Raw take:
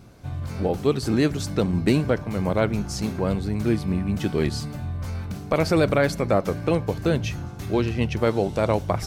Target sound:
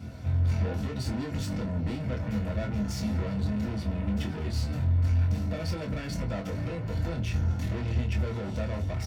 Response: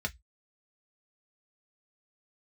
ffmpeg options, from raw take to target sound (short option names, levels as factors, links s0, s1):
-filter_complex "[0:a]acompressor=threshold=0.0891:ratio=6,alimiter=limit=0.1:level=0:latency=1:release=100,asoftclip=type=tanh:threshold=0.015,asplit=2[s0][s1];[s1]adelay=24,volume=0.562[s2];[s0][s2]amix=inputs=2:normalize=0[s3];[1:a]atrim=start_sample=2205[s4];[s3][s4]afir=irnorm=-1:irlink=0"